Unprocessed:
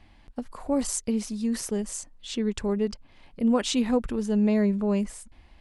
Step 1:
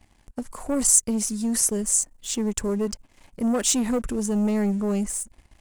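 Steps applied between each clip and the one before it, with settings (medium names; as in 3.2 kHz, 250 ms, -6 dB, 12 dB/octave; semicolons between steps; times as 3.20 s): waveshaping leveller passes 2; resonant high shelf 5.5 kHz +10 dB, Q 1.5; trim -4.5 dB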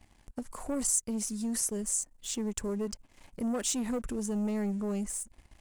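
compression 1.5:1, threshold -38 dBFS, peak gain reduction 9 dB; trim -2.5 dB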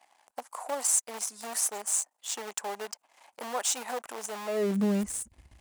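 in parallel at -8 dB: bit crusher 5-bit; on the sum: high-pass sweep 770 Hz -> 65 Hz, 4.45–5.07 s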